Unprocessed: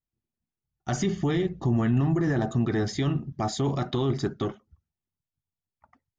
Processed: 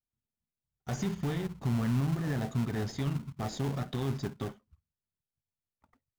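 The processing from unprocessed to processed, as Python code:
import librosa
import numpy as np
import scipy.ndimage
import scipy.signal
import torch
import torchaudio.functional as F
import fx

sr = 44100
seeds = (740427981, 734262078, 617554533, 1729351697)

p1 = fx.peak_eq(x, sr, hz=340.0, db=-14.5, octaves=0.2)
p2 = fx.sample_hold(p1, sr, seeds[0], rate_hz=1200.0, jitter_pct=20)
p3 = p1 + F.gain(torch.from_numpy(p2), -4.0).numpy()
y = F.gain(torch.from_numpy(p3), -9.0).numpy()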